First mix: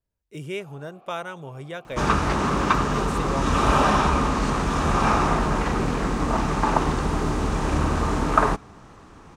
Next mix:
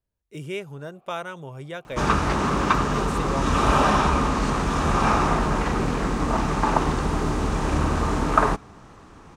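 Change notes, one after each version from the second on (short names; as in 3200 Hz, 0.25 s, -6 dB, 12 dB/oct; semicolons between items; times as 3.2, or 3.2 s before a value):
first sound -9.0 dB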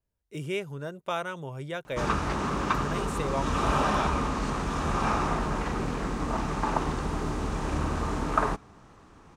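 first sound: muted; second sound -6.5 dB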